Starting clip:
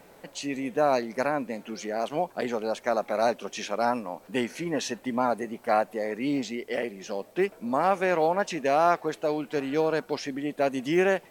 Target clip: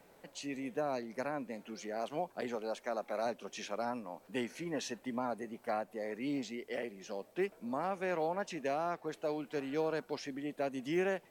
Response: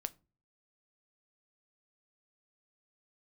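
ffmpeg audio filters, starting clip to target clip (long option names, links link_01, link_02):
-filter_complex "[0:a]asettb=1/sr,asplit=3[link_01][link_02][link_03];[link_01]atrim=end=2.554[link_04];[link_02]atrim=start=2.55:end=3.26,asetpts=PTS-STARTPTS,afade=type=in:duration=0.004:curve=qsin,afade=type=out:start_time=0.706:duration=0.004:curve=qsin,equalizer=frequency=130:width_type=o:width=0.61:gain=-13[link_05];[link_03]atrim=start=3.256[link_06];[link_04][link_05]acrossfade=duration=0.004:curve1=hsin:curve2=qsin[link_07];[link_07][link_06]acrossfade=duration=0.004:curve1=qsin:curve2=hsin,acrossover=split=340[link_08][link_09];[link_09]alimiter=limit=-18dB:level=0:latency=1:release=303[link_10];[link_08][link_10]amix=inputs=2:normalize=0,volume=-9dB"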